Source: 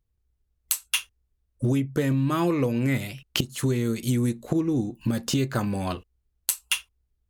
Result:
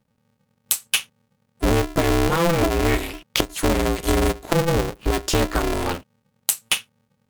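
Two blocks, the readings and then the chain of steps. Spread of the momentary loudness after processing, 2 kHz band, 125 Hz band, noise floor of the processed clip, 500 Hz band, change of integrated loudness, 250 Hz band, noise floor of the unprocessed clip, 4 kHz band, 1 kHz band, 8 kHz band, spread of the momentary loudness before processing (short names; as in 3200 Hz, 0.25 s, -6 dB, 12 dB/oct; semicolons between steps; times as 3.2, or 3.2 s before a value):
6 LU, +7.5 dB, +1.0 dB, -71 dBFS, +8.0 dB, +4.5 dB, +1.0 dB, -75 dBFS, +6.0 dB, +10.0 dB, +5.0 dB, 6 LU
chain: polarity switched at an audio rate 170 Hz; gain +4.5 dB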